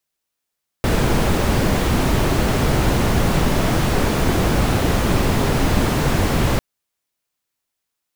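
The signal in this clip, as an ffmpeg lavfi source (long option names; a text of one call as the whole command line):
ffmpeg -f lavfi -i "anoisesrc=color=brown:amplitude=0.7:duration=5.75:sample_rate=44100:seed=1" out.wav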